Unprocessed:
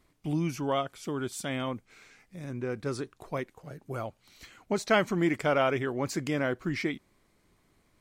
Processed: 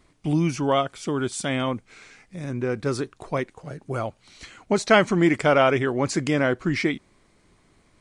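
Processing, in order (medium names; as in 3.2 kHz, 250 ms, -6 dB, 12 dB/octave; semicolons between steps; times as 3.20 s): resampled via 22.05 kHz; trim +7.5 dB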